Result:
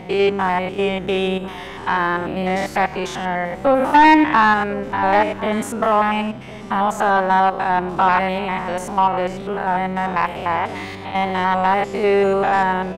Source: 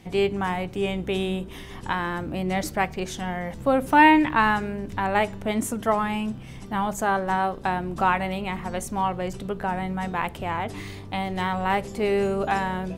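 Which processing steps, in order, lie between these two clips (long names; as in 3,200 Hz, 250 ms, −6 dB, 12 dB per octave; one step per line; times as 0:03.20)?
spectrum averaged block by block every 100 ms
mid-hump overdrive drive 16 dB, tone 2,000 Hz, clips at −6 dBFS
slap from a distant wall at 180 metres, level −16 dB
level +3.5 dB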